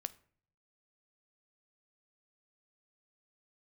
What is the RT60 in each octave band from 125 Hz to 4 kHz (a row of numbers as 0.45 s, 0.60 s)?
0.95 s, 0.70 s, 0.55 s, 0.45 s, 0.45 s, 0.35 s